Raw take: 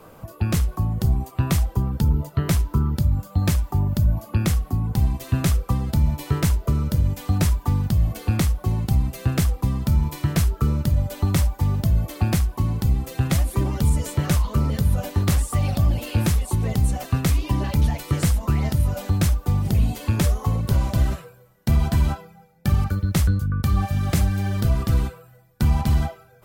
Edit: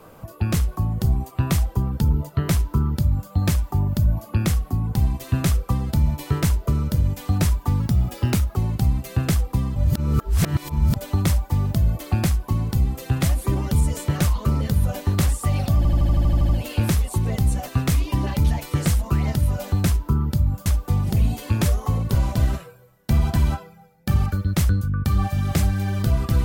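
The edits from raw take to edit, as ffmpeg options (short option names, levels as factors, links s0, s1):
-filter_complex "[0:a]asplit=16[s0][s1][s2][s3][s4][s5][s6][s7][s8][s9][s10][s11][s12][s13][s14][s15];[s0]atrim=end=7.804[s16];[s1]atrim=start=7.8:end=8.65,asetpts=PTS-STARTPTS,asetrate=49392,aresample=44100[s17];[s2]atrim=start=8.646:end=9.852[s18];[s3]atrim=start=9.848:end=11.052,asetpts=PTS-STARTPTS,areverse[s19];[s4]atrim=start=11.048:end=15.942[s20];[s5]atrim=start=15.858:end=15.942[s21];[s6]atrim=start=15.858:end=15.942[s22];[s7]atrim=start=15.858:end=15.942[s23];[s8]atrim=start=15.858:end=15.942[s24];[s9]atrim=start=15.858:end=15.942[s25];[s10]atrim=start=15.858:end=15.942[s26];[s11]atrim=start=15.858:end=15.942[s27];[s12]atrim=start=15.858:end=15.942[s28];[s13]atrim=start=15.858:end=19.242[s29];[s14]atrim=start=2.518:end=3.312[s30];[s15]atrim=start=19.238[s31];[s16][s17]acrossfade=d=0.004:c1=hsin:c2=hsin[s32];[s32][s18]acrossfade=d=0.004:c1=hsin:c2=hsin[s33];[s33][s19]acrossfade=d=0.004:c1=hsin:c2=hsin[s34];[s34][s20]acrossfade=d=0.004:c1=hsin:c2=hsin[s35];[s35][s21]acrossfade=d=0.004:c1=hsin:c2=hsin[s36];[s36][s22]acrossfade=d=0.004:c1=hsin:c2=hsin[s37];[s37][s23]acrossfade=d=0.004:c1=hsin:c2=hsin[s38];[s38][s24]acrossfade=d=0.004:c1=hsin:c2=hsin[s39];[s39][s25]acrossfade=d=0.004:c1=hsin:c2=hsin[s40];[s40][s26]acrossfade=d=0.004:c1=hsin:c2=hsin[s41];[s41][s27]acrossfade=d=0.004:c1=hsin:c2=hsin[s42];[s42][s28]acrossfade=d=0.004:c1=hsin:c2=hsin[s43];[s43][s29]acrossfade=d=0.004:c1=hsin:c2=hsin[s44];[s44][s30]acrossfade=d=0.004:c1=hsin:c2=hsin[s45];[s45][s31]acrossfade=d=0.004:c1=hsin:c2=hsin"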